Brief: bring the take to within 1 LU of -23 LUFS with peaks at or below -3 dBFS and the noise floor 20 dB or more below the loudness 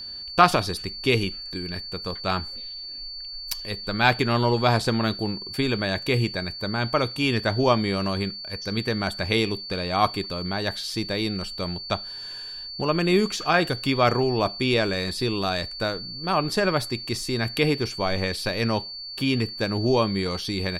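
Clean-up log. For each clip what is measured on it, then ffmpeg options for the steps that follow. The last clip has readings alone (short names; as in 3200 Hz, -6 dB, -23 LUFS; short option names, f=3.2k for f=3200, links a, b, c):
steady tone 4500 Hz; tone level -34 dBFS; loudness -25.0 LUFS; peak -2.5 dBFS; loudness target -23.0 LUFS
-> -af "bandreject=f=4.5k:w=30"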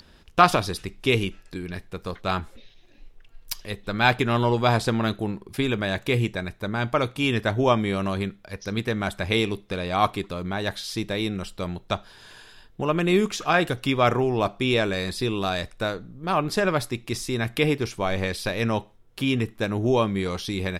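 steady tone none; loudness -25.0 LUFS; peak -2.5 dBFS; loudness target -23.0 LUFS
-> -af "volume=2dB,alimiter=limit=-3dB:level=0:latency=1"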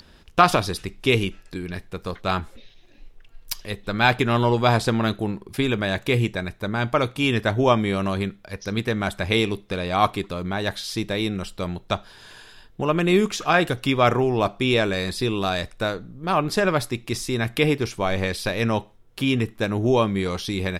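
loudness -23.0 LUFS; peak -3.0 dBFS; noise floor -52 dBFS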